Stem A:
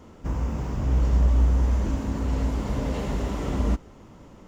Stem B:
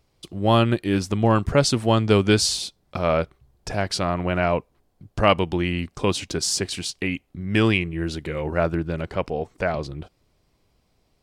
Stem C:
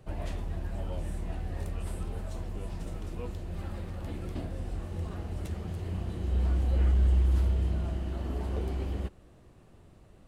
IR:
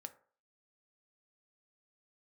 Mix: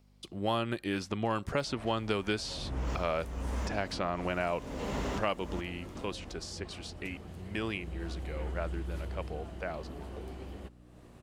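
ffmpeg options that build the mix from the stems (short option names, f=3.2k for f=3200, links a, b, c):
-filter_complex "[0:a]adelay=1850,volume=1dB[a];[1:a]aeval=exprs='val(0)+0.00316*(sin(2*PI*50*n/s)+sin(2*PI*2*50*n/s)/2+sin(2*PI*3*50*n/s)/3+sin(2*PI*4*50*n/s)/4+sin(2*PI*5*50*n/s)/5)':c=same,volume=-5dB,afade=t=out:st=5.03:d=0.64:silence=0.375837,asplit=3[b][c][d];[c]volume=-14.5dB[e];[2:a]acompressor=mode=upward:threshold=-35dB:ratio=2.5,aeval=exprs='val(0)+0.00708*(sin(2*PI*60*n/s)+sin(2*PI*2*60*n/s)/2+sin(2*PI*3*60*n/s)/3+sin(2*PI*4*60*n/s)/4+sin(2*PI*5*60*n/s)/5)':c=same,adelay=1600,volume=-5dB[f];[d]apad=whole_len=278797[g];[a][g]sidechaincompress=threshold=-37dB:ratio=8:attack=16:release=403[h];[3:a]atrim=start_sample=2205[i];[e][i]afir=irnorm=-1:irlink=0[j];[h][b][f][j]amix=inputs=4:normalize=0,lowshelf=f=180:g=-9,acrossover=split=950|2700|5600[k][l][m][n];[k]acompressor=threshold=-31dB:ratio=4[o];[l]acompressor=threshold=-36dB:ratio=4[p];[m]acompressor=threshold=-45dB:ratio=4[q];[n]acompressor=threshold=-56dB:ratio=4[r];[o][p][q][r]amix=inputs=4:normalize=0"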